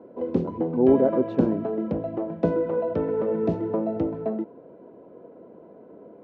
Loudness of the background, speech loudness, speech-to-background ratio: -27.0 LUFS, -23.5 LUFS, 3.5 dB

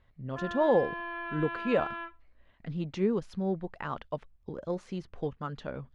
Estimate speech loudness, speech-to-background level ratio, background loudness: -32.5 LUFS, 5.5 dB, -38.0 LUFS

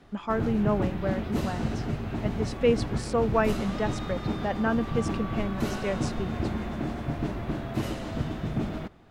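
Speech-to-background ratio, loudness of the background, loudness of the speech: 2.0 dB, -32.0 LUFS, -30.0 LUFS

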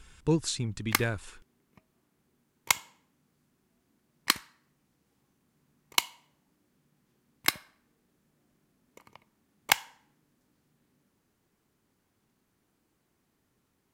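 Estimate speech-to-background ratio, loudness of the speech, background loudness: -1.5 dB, -31.5 LUFS, -30.0 LUFS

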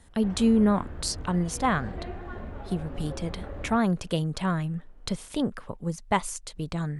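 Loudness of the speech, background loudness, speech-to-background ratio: -28.0 LUFS, -40.5 LUFS, 12.5 dB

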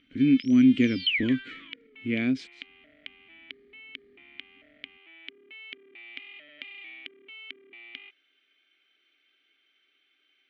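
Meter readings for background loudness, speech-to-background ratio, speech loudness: -38.0 LUFS, 14.0 dB, -24.0 LUFS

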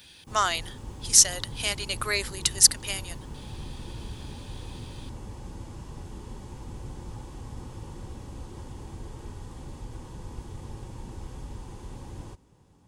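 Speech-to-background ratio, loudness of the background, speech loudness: 19.5 dB, -42.0 LUFS, -22.5 LUFS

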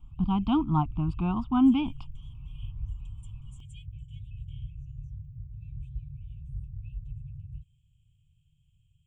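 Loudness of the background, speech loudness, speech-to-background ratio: -43.0 LUFS, -26.5 LUFS, 16.5 dB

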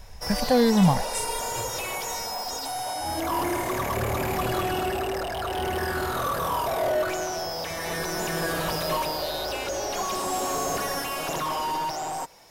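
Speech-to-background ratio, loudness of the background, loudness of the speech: 5.5 dB, -28.0 LUFS, -22.5 LUFS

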